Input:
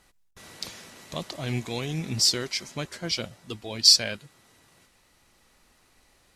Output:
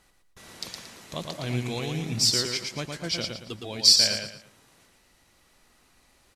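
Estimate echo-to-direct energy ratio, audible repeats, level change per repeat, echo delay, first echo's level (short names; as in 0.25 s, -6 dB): -4.0 dB, 4, -10.0 dB, 0.114 s, -4.5 dB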